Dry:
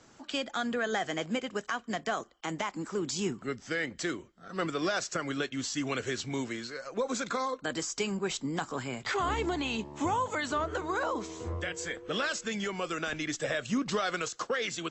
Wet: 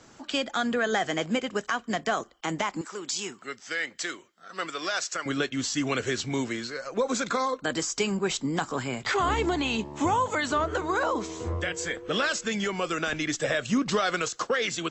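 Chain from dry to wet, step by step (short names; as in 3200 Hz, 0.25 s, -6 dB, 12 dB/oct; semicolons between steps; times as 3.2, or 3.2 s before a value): 2.81–5.26 HPF 1200 Hz 6 dB/oct; gain +5 dB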